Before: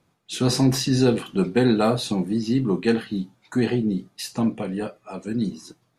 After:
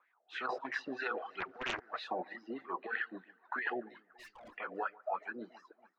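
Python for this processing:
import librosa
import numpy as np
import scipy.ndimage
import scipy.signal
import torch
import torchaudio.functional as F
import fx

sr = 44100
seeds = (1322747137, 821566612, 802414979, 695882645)

y = fx.wah_lfo(x, sr, hz=3.1, low_hz=630.0, high_hz=2000.0, q=6.5)
y = fx.over_compress(y, sr, threshold_db=-42.0, ratio=-0.5)
y = fx.bandpass_edges(y, sr, low_hz=380.0, high_hz=3000.0)
y = fx.tube_stage(y, sr, drive_db=57.0, bias=0.35, at=(4.11, 4.57))
y = fx.echo_alternate(y, sr, ms=142, hz=1500.0, feedback_pct=64, wet_db=-11.5)
y = fx.dereverb_blind(y, sr, rt60_s=1.2)
y = fx.doppler_dist(y, sr, depth_ms=0.58, at=(1.4, 2.03))
y = F.gain(torch.from_numpy(y), 6.0).numpy()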